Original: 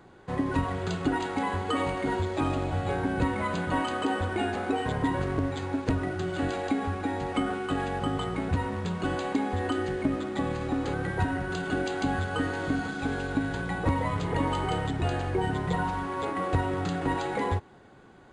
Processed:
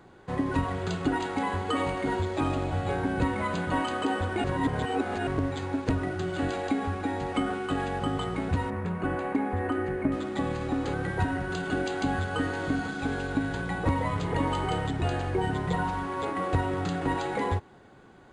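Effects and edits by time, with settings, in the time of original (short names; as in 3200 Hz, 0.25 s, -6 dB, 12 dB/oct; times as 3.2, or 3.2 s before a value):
4.44–5.27 reverse
8.7–10.12 band shelf 5000 Hz -14 dB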